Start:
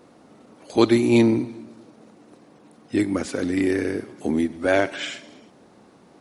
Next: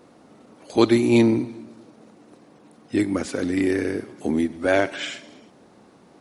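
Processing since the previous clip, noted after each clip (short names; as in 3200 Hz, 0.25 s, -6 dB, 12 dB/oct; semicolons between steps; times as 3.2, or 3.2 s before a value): nothing audible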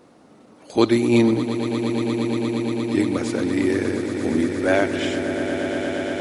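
swelling echo 0.117 s, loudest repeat 8, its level -12 dB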